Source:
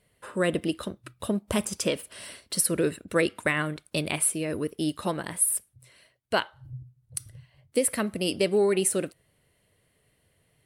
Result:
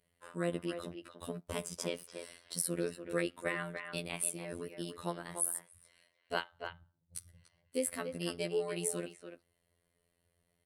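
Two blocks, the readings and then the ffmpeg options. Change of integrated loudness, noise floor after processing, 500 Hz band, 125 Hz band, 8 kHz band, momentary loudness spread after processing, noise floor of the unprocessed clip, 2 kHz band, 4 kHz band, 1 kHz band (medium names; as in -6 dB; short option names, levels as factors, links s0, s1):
-11.0 dB, -80 dBFS, -10.5 dB, -10.0 dB, -10.5 dB, 13 LU, -70 dBFS, -10.0 dB, -10.5 dB, -9.5 dB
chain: -filter_complex "[0:a]afftfilt=real='hypot(re,im)*cos(PI*b)':imag='0':win_size=2048:overlap=0.75,asplit=2[s0][s1];[s1]adelay=290,highpass=300,lowpass=3400,asoftclip=type=hard:threshold=0.282,volume=0.447[s2];[s0][s2]amix=inputs=2:normalize=0,volume=0.447"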